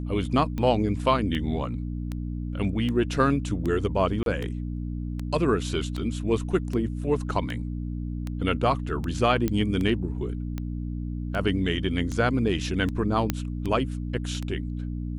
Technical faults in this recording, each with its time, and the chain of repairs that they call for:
hum 60 Hz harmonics 5 -31 dBFS
tick 78 rpm -19 dBFS
4.23–4.26 s: dropout 32 ms
9.48 s: pop -13 dBFS
13.30 s: pop -9 dBFS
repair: de-click; de-hum 60 Hz, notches 5; interpolate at 4.23 s, 32 ms

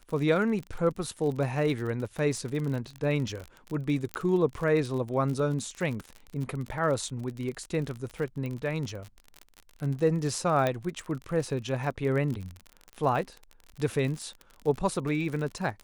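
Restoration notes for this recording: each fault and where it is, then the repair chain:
crackle 43 per s -33 dBFS
4.14 s: pop -16 dBFS
8.46 s: pop -24 dBFS
10.67 s: pop -14 dBFS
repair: de-click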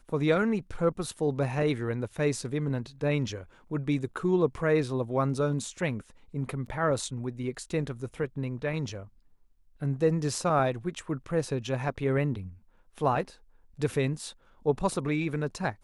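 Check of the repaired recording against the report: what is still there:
10.67 s: pop

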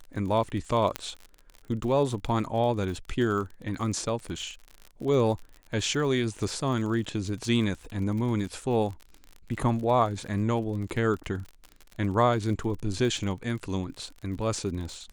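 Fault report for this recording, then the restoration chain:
crackle 45 per s -35 dBFS
0.96 s: pop -12 dBFS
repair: de-click

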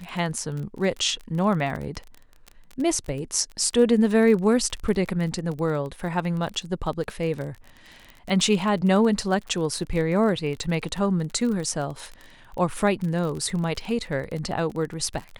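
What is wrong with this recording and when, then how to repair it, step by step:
crackle 34 per s -30 dBFS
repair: de-click

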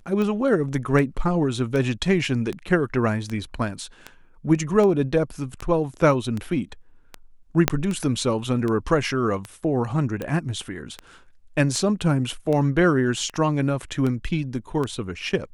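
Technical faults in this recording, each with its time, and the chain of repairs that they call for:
tick 78 rpm -16 dBFS
7.68 s: pop -1 dBFS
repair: de-click

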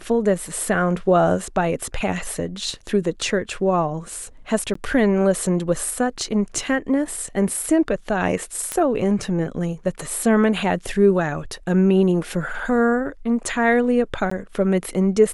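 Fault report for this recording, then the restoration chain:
4.74–4.75 s: dropout 14 ms
8.72 s: pop -10 dBFS
14.30–14.31 s: dropout 14 ms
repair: de-click; interpolate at 4.74 s, 14 ms; interpolate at 14.30 s, 14 ms

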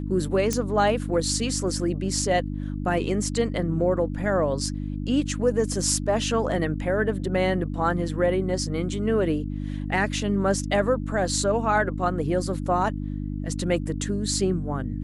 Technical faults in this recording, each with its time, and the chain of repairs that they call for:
hum 50 Hz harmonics 6 -30 dBFS
0.53 s: pop -10 dBFS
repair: de-click; de-hum 50 Hz, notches 6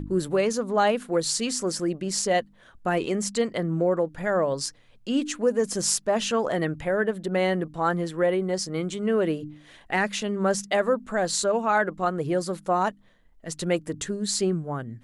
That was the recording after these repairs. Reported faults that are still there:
nothing left

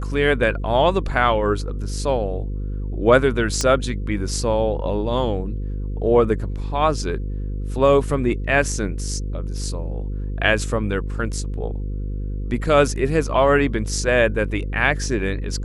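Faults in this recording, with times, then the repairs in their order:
buzz 50 Hz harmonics 10 -26 dBFS
3.61 s: pop -8 dBFS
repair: de-click; de-hum 50 Hz, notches 10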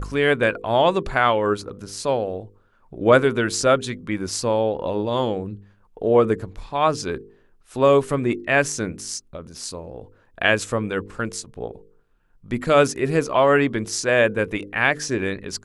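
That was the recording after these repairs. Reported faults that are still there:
nothing left

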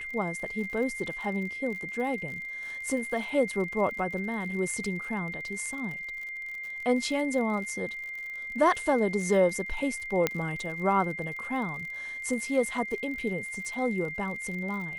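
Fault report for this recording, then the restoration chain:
crackle 55 per s -37 dBFS
whine 2.1 kHz -35 dBFS
10.27 s: pop -10 dBFS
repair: de-click; band-stop 2.1 kHz, Q 30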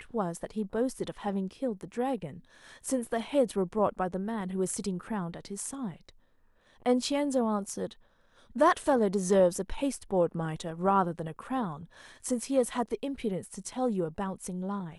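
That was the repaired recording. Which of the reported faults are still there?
nothing left

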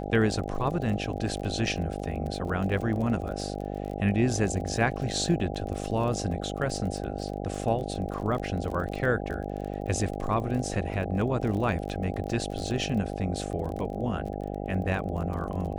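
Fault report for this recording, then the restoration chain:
buzz 50 Hz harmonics 16 -34 dBFS
crackle 27 per s -34 dBFS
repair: de-click; de-hum 50 Hz, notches 16

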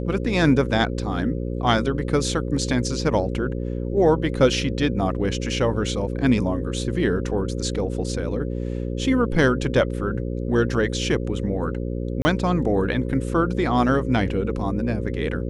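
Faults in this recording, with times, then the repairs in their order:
buzz 60 Hz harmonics 9 -27 dBFS
12.22–12.25 s: dropout 30 ms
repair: de-hum 60 Hz, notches 9; interpolate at 12.22 s, 30 ms

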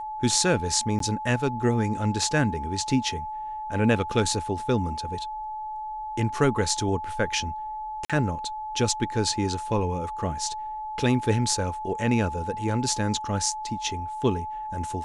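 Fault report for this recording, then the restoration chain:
whine 860 Hz -31 dBFS
0.99–1.00 s: dropout 13 ms
8.05–8.10 s: dropout 46 ms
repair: band-stop 860 Hz, Q 30; interpolate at 0.99 s, 13 ms; interpolate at 8.05 s, 46 ms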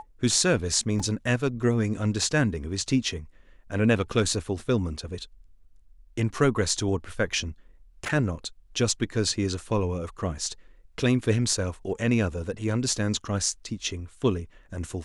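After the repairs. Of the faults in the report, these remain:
nothing left

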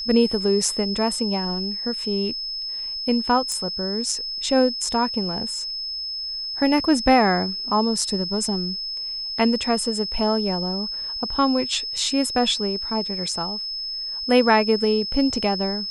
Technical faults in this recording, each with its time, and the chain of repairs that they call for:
whine 5.2 kHz -27 dBFS
3.52 s: pop -14 dBFS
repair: de-click; band-stop 5.2 kHz, Q 30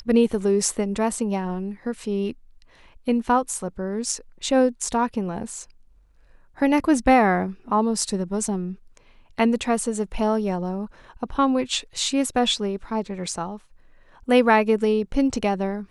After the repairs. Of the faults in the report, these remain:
nothing left

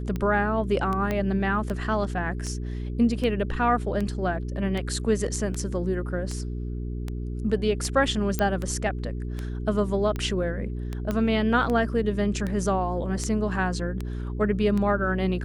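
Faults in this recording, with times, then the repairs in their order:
hum 60 Hz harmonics 7 -31 dBFS
tick 78 rpm -18 dBFS
1.11 s: pop -14 dBFS
8.39 s: pop -11 dBFS
11.11 s: pop -15 dBFS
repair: de-click; de-hum 60 Hz, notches 7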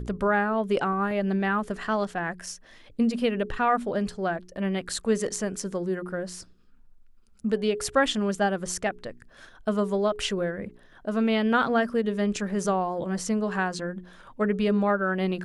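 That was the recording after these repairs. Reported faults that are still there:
1.11 s: pop
11.11 s: pop

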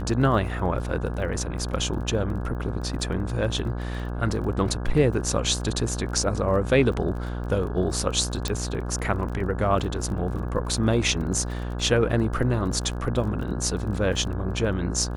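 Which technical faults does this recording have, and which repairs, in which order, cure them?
buzz 60 Hz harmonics 28 -30 dBFS
crackle 24 per s -34 dBFS
8.48 s: pop -12 dBFS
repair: de-click; de-hum 60 Hz, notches 28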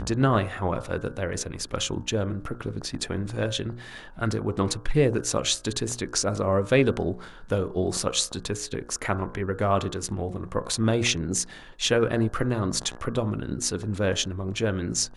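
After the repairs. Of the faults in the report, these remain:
nothing left

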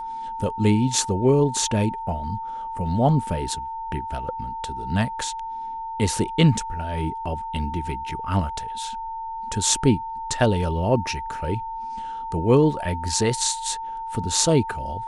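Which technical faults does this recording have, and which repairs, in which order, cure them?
whine 900 Hz -29 dBFS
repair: band-stop 900 Hz, Q 30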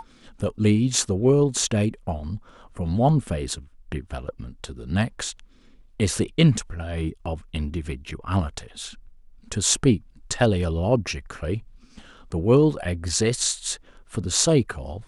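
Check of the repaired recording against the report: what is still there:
nothing left

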